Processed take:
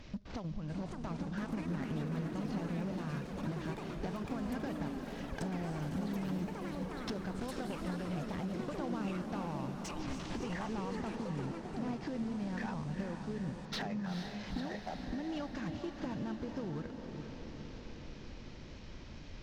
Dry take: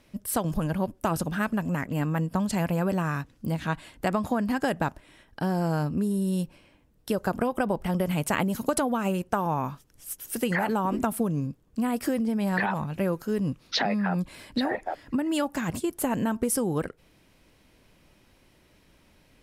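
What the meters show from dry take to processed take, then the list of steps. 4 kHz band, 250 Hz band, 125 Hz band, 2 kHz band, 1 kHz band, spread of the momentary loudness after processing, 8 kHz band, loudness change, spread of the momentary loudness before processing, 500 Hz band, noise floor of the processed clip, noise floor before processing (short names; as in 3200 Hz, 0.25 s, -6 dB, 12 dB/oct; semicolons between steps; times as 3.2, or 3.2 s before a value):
-10.5 dB, -10.0 dB, -9.5 dB, -13.5 dB, -14.0 dB, 8 LU, -18.5 dB, -11.5 dB, 6 LU, -12.5 dB, -48 dBFS, -61 dBFS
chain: CVSD 32 kbps; low shelf 160 Hz +11.5 dB; compressor 20:1, threshold -40 dBFS, peak gain reduction 25 dB; hard clip -37 dBFS, distortion -18 dB; on a send: diffused feedback echo 0.451 s, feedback 66%, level -6.5 dB; on the sum: echoes that change speed 0.685 s, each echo +7 st, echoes 3, each echo -6 dB; gain +3.5 dB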